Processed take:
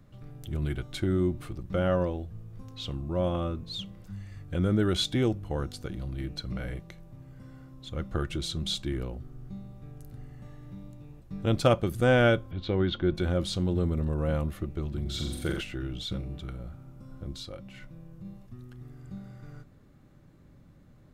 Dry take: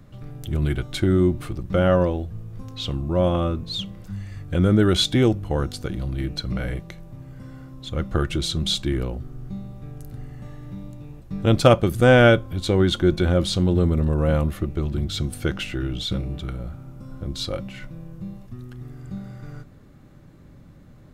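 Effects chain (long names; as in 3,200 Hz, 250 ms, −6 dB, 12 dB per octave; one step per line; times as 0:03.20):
0:12.51–0:13.15: low-pass filter 4,000 Hz 24 dB per octave
0:15.01–0:15.61: flutter between parallel walls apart 7.6 metres, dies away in 0.78 s
0:17.34–0:18.25: downward compressor 2 to 1, threshold −34 dBFS, peak gain reduction 6 dB
level −8 dB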